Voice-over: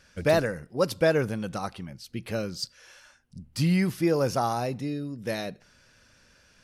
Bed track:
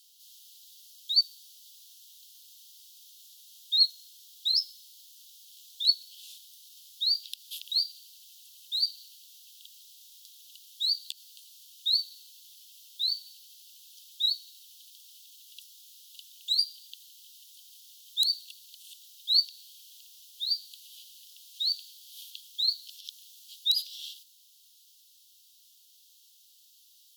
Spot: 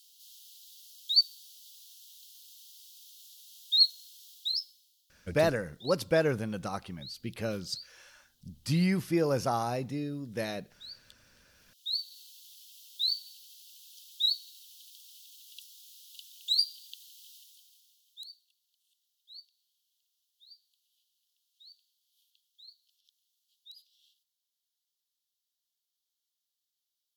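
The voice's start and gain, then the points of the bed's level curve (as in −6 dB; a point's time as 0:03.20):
5.10 s, −3.5 dB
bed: 0:04.30 0 dB
0:05.06 −19 dB
0:11.44 −19 dB
0:12.20 −0.5 dB
0:17.34 −0.5 dB
0:18.50 −26.5 dB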